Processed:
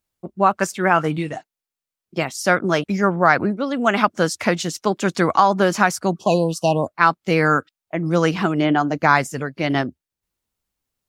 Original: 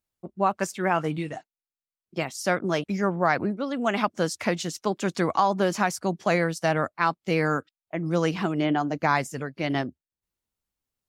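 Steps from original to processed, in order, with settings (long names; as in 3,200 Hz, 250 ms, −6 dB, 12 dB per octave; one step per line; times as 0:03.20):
healed spectral selection 0:06.18–0:06.86, 1,100–2,500 Hz before
dynamic equaliser 1,400 Hz, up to +5 dB, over −38 dBFS, Q 2.7
level +6 dB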